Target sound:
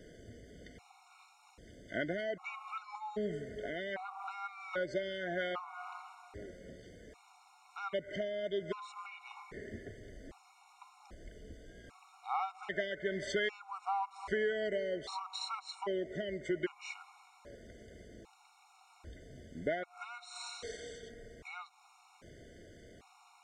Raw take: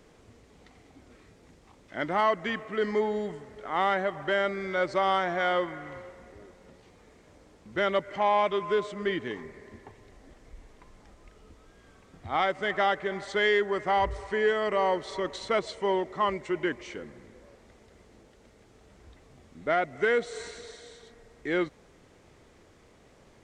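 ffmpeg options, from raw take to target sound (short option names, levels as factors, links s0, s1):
-af "acompressor=threshold=0.02:ratio=6,afftfilt=real='re*gt(sin(2*PI*0.63*pts/sr)*(1-2*mod(floor(b*sr/1024/730),2)),0)':imag='im*gt(sin(2*PI*0.63*pts/sr)*(1-2*mod(floor(b*sr/1024/730),2)),0)':win_size=1024:overlap=0.75,volume=1.41"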